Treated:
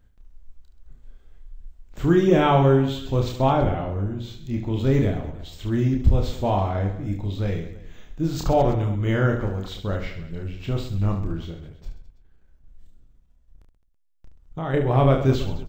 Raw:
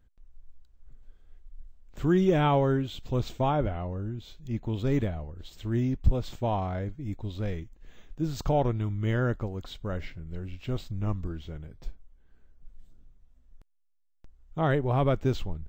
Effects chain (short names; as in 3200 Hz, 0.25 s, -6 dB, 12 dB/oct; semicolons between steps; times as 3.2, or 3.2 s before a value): 11.51–14.74 level quantiser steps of 11 dB; reverse bouncing-ball echo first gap 30 ms, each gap 1.4×, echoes 5; gain +4.5 dB